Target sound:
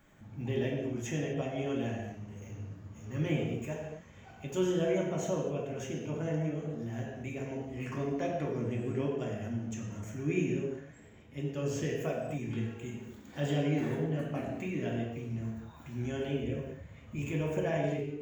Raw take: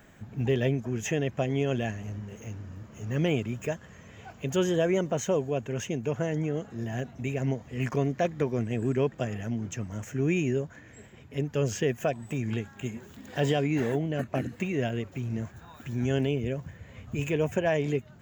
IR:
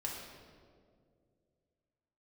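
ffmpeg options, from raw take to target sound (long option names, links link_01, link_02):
-filter_complex "[1:a]atrim=start_sample=2205,afade=type=out:start_time=0.37:duration=0.01,atrim=end_sample=16758,asetrate=52920,aresample=44100[link_01];[0:a][link_01]afir=irnorm=-1:irlink=0,volume=-5dB"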